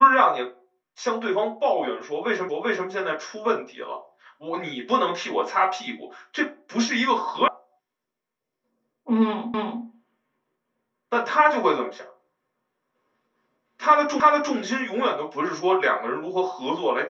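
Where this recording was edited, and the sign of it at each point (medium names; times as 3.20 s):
2.49 s: repeat of the last 0.39 s
7.48 s: sound stops dead
9.54 s: repeat of the last 0.29 s
14.20 s: repeat of the last 0.35 s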